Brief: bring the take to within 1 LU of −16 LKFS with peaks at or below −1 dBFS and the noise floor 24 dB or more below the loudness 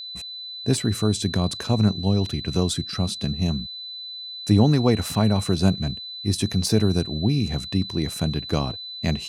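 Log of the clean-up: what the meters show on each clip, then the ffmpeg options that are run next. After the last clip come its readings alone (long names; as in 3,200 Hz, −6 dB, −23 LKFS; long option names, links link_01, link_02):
interfering tone 4,000 Hz; level of the tone −33 dBFS; integrated loudness −23.5 LKFS; sample peak −5.0 dBFS; target loudness −16.0 LKFS
→ -af "bandreject=frequency=4000:width=30"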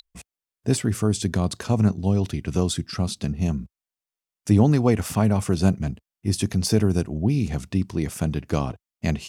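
interfering tone none found; integrated loudness −23.5 LKFS; sample peak −5.0 dBFS; target loudness −16.0 LKFS
→ -af "volume=7.5dB,alimiter=limit=-1dB:level=0:latency=1"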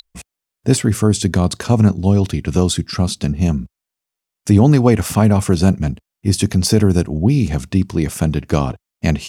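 integrated loudness −16.5 LKFS; sample peak −1.0 dBFS; background noise floor −84 dBFS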